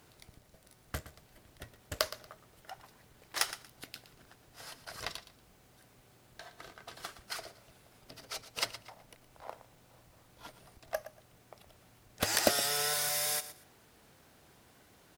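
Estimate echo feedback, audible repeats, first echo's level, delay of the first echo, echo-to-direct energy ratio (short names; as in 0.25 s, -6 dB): 21%, 2, -14.0 dB, 0.117 s, -14.0 dB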